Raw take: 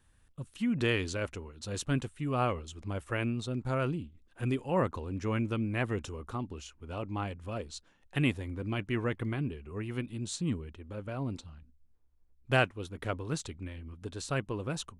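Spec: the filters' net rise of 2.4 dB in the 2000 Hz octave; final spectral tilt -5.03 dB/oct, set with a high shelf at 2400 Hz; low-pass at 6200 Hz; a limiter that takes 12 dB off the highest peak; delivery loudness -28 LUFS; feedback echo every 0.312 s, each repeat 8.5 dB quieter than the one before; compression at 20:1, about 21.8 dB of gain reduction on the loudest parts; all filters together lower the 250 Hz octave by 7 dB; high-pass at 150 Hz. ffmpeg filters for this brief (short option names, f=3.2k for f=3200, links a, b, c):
-af "highpass=150,lowpass=6.2k,equalizer=f=250:t=o:g=-8,equalizer=f=2k:t=o:g=6.5,highshelf=f=2.4k:g=-6,acompressor=threshold=-41dB:ratio=20,alimiter=level_in=11.5dB:limit=-24dB:level=0:latency=1,volume=-11.5dB,aecho=1:1:312|624|936|1248:0.376|0.143|0.0543|0.0206,volume=21dB"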